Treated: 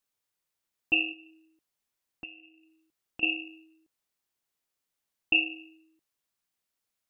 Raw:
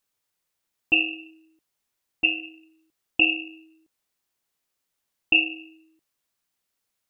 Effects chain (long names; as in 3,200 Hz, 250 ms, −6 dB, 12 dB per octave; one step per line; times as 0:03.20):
0:01.12–0:03.23: downward compressor 3 to 1, threshold −42 dBFS, peak gain reduction 19.5 dB
level −5 dB